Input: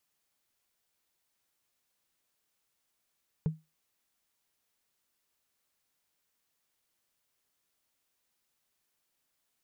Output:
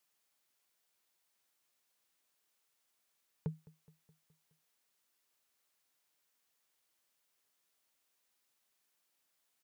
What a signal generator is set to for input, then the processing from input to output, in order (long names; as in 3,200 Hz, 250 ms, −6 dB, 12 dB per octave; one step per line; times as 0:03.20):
struck wood, lowest mode 158 Hz, decay 0.22 s, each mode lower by 12 dB, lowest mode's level −22 dB
high-pass filter 52 Hz
low-shelf EQ 220 Hz −8.5 dB
repeating echo 210 ms, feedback 60%, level −22 dB